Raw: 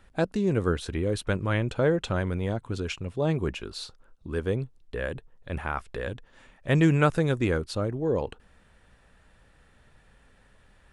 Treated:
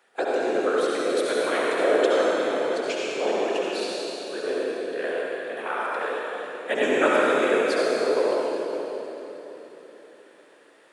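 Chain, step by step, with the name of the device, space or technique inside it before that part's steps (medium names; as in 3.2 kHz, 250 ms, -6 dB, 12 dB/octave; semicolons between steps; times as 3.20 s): whispering ghost (whisper effect; high-pass 370 Hz 24 dB/octave; reverberation RT60 3.7 s, pre-delay 59 ms, DRR -6 dB)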